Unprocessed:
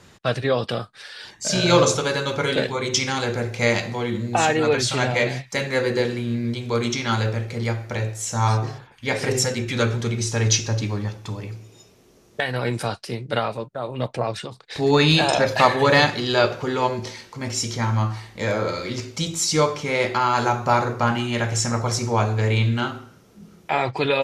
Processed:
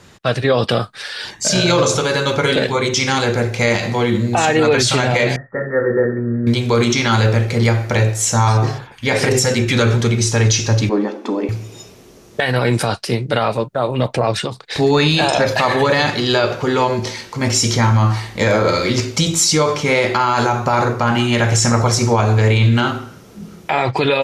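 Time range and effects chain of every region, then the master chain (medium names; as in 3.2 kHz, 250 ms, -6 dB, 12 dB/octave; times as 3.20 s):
5.36–6.47 s: rippled Chebyshev low-pass 1.9 kHz, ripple 9 dB + peaking EQ 670 Hz -4 dB 2.3 oct + doubling 50 ms -11 dB
10.89–11.49 s: brick-wall FIR high-pass 220 Hz + tilt EQ -4.5 dB/octave
whole clip: level rider gain up to 8 dB; loudness maximiser +9 dB; trim -4.5 dB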